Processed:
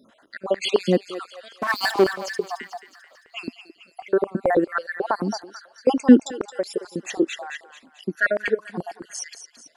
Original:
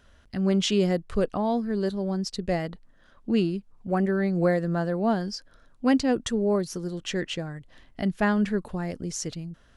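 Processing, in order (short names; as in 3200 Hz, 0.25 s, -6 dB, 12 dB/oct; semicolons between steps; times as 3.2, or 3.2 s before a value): random spectral dropouts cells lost 62%; 1.59–2.04 sample leveller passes 5; thinning echo 0.22 s, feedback 55%, high-pass 880 Hz, level -10 dB; stepped high-pass 9.2 Hz 250–1800 Hz; gain +4.5 dB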